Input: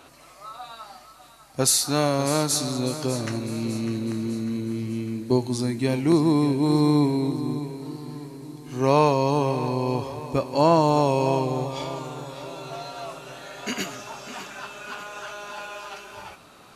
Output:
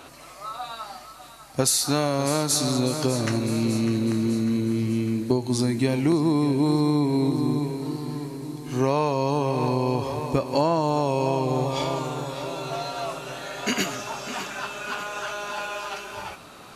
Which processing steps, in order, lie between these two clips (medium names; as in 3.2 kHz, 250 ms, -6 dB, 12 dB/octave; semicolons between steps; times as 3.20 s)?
compression, threshold -23 dBFS, peak gain reduction 10.5 dB; trim +5 dB